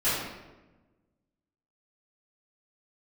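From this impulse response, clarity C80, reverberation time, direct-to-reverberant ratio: 2.5 dB, 1.1 s, -14.0 dB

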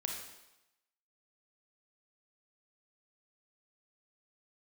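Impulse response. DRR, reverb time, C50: 1.0 dB, 0.95 s, 3.0 dB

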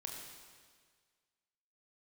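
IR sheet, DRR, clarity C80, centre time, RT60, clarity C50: 0.0 dB, 3.5 dB, 70 ms, 1.7 s, 2.5 dB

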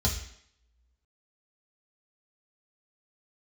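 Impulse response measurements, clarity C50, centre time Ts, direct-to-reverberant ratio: 8.0 dB, 22 ms, -1.5 dB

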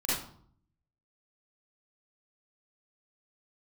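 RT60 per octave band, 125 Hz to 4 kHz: 0.95 s, 0.80 s, 0.60 s, 0.60 s, 0.40 s, 0.40 s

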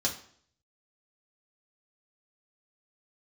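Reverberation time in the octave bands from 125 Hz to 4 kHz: 0.75 s, 0.60 s, 0.60 s, 0.55 s, 0.50 s, 0.50 s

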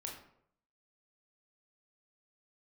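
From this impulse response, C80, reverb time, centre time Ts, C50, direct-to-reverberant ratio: 9.0 dB, 0.70 s, 33 ms, 5.0 dB, -0.5 dB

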